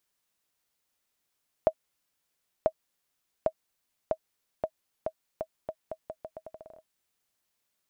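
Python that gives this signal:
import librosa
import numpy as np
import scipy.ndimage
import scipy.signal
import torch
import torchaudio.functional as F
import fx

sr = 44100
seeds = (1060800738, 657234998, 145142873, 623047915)

y = fx.bouncing_ball(sr, first_gap_s=0.99, ratio=0.81, hz=636.0, decay_ms=64.0, level_db=-10.5)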